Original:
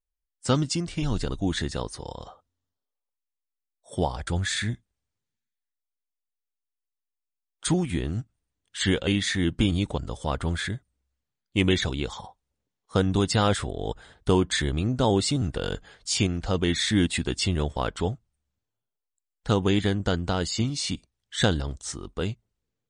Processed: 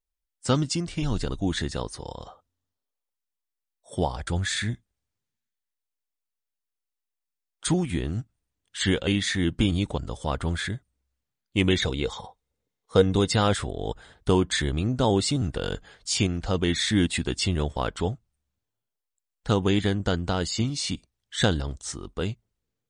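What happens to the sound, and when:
11.8–13.35 small resonant body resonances 470/2100/3700 Hz, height 9 dB

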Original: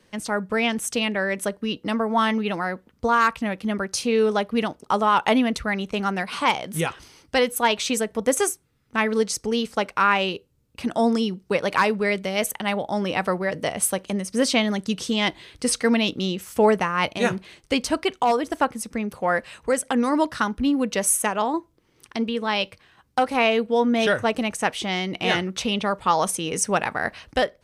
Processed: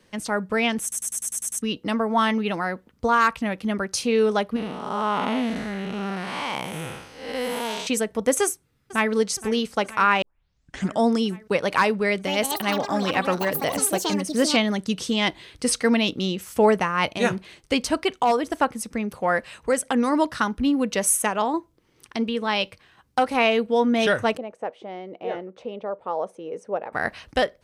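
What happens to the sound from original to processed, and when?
0.82 stutter in place 0.10 s, 8 plays
4.56–7.87 time blur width 0.261 s
8.43–9.12 echo throw 0.47 s, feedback 75%, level -16.5 dB
10.22 tape start 0.78 s
12.02–15.27 echoes that change speed 0.246 s, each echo +6 st, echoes 2, each echo -6 dB
24.37–26.93 band-pass 520 Hz, Q 2.4

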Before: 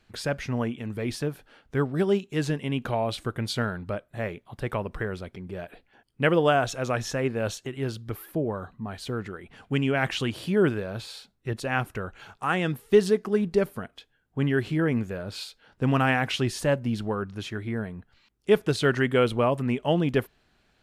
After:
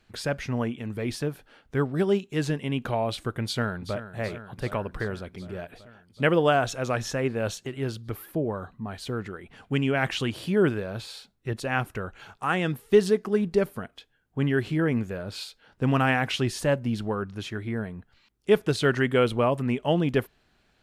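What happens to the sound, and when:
3.43–4.08 echo throw 0.38 s, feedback 75%, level -12.5 dB

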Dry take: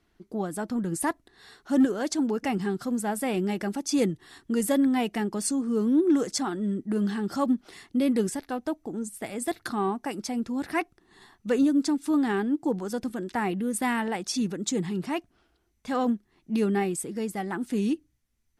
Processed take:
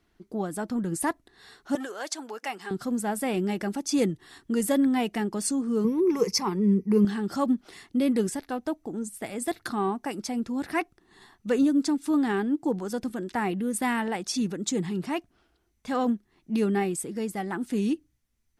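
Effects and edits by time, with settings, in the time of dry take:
1.75–2.71 HPF 710 Hz
5.84–7.05 ripple EQ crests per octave 0.83, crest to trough 16 dB

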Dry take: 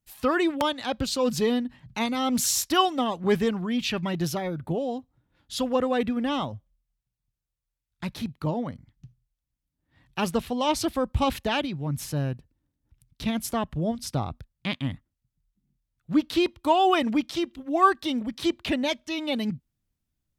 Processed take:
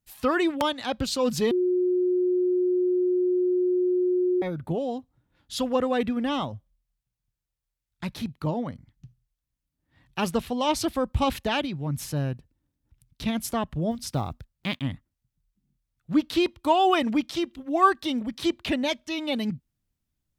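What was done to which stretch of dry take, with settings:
1.51–4.42 bleep 362 Hz -20 dBFS
13.91–14.82 block floating point 7-bit

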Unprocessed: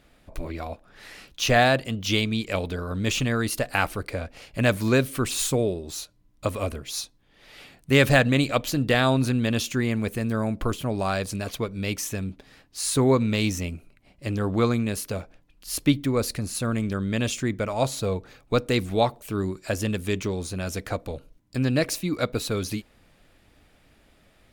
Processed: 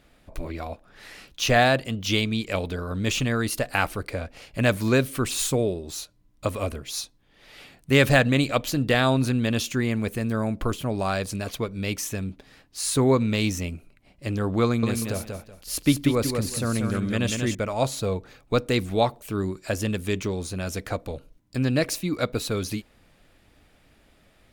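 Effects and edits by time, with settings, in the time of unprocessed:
14.64–17.55 feedback echo 0.188 s, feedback 23%, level -5 dB

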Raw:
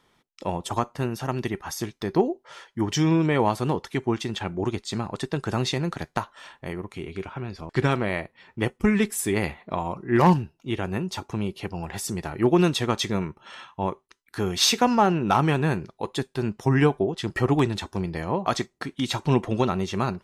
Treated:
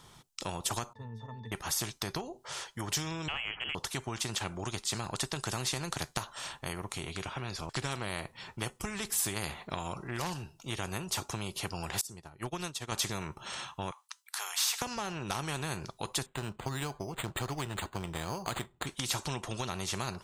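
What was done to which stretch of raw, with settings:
0.93–1.52 octave resonator A, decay 0.27 s
3.28–3.75 inverted band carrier 3100 Hz
12.01–12.92 upward expander 2.5:1, over -33 dBFS
13.91–14.82 steep high-pass 840 Hz
16.26–18.87 decimation joined by straight lines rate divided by 8×
whole clip: compressor 4:1, threshold -26 dBFS; graphic EQ 125/250/500/2000/8000 Hz +6/-7/-6/-8/+5 dB; spectral compressor 2:1; gain +1.5 dB

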